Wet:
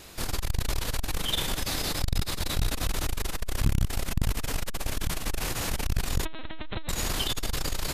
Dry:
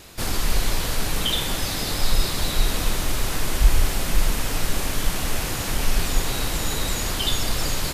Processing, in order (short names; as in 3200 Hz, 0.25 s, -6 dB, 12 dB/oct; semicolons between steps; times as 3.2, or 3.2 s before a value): notches 50/100/150/200/250 Hz; 6.25–6.89 LPC vocoder at 8 kHz pitch kept; core saturation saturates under 150 Hz; gain -2 dB